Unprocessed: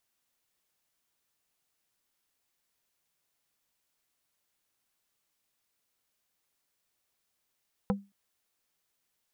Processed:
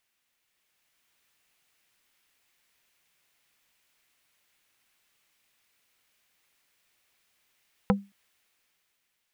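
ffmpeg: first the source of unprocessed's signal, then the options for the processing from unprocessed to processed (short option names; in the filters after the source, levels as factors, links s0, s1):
-f lavfi -i "aevalsrc='0.0794*pow(10,-3*t/0.26)*sin(2*PI*199*t)+0.0562*pow(10,-3*t/0.087)*sin(2*PI*497.5*t)+0.0398*pow(10,-3*t/0.049)*sin(2*PI*796*t)+0.0282*pow(10,-3*t/0.038)*sin(2*PI*995*t)+0.02*pow(10,-3*t/0.028)*sin(2*PI*1293.5*t)':d=0.22:s=44100"
-af "equalizer=f=2300:t=o:w=1.4:g=8,dynaudnorm=f=180:g=9:m=2"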